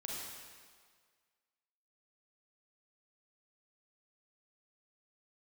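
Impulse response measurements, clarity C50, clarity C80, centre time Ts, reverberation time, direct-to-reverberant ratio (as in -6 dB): -2.0 dB, 0.0 dB, 0.115 s, 1.8 s, -3.5 dB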